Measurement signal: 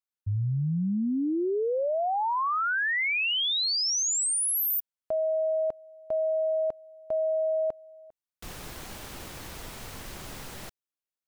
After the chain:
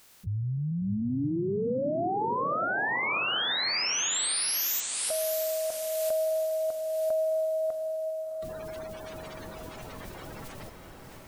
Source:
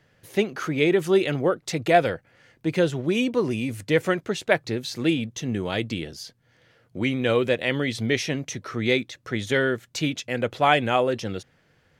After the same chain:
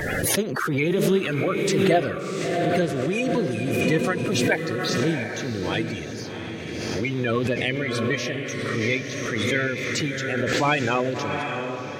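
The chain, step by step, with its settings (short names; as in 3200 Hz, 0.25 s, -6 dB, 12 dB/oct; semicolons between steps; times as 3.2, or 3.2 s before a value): bin magnitudes rounded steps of 30 dB; diffused feedback echo 0.695 s, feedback 43%, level -5 dB; backwards sustainer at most 22 dB/s; gain -2.5 dB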